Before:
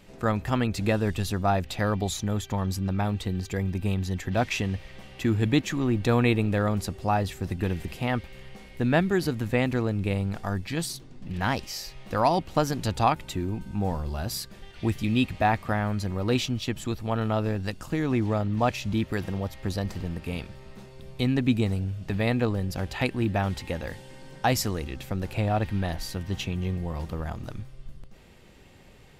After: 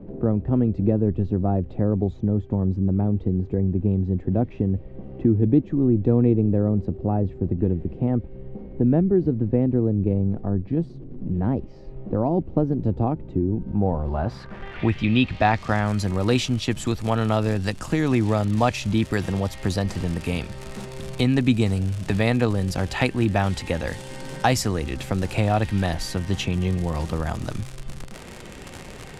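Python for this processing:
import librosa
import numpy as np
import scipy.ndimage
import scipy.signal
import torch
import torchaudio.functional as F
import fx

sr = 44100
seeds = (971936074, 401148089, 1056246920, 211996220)

y = fx.dmg_crackle(x, sr, seeds[0], per_s=110.0, level_db=-35.0)
y = fx.filter_sweep_lowpass(y, sr, from_hz=380.0, to_hz=9400.0, start_s=13.49, end_s=15.98, q=1.3)
y = fx.band_squash(y, sr, depth_pct=40)
y = F.gain(torch.from_numpy(y), 4.5).numpy()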